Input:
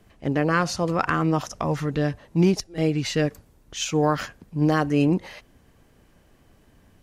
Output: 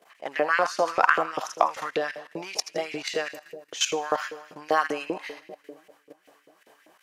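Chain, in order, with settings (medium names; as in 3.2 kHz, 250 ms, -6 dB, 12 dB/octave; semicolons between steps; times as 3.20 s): two-band feedback delay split 640 Hz, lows 357 ms, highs 81 ms, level -14 dB; level held to a coarse grid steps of 14 dB; LFO high-pass saw up 5.1 Hz 450–2500 Hz; trim +5.5 dB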